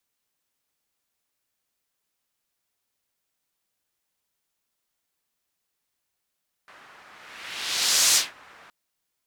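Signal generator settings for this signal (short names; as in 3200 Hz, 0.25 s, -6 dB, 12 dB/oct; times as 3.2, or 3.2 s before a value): whoosh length 2.02 s, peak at 1.47, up 1.16 s, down 0.20 s, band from 1400 Hz, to 6300 Hz, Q 1.3, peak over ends 32 dB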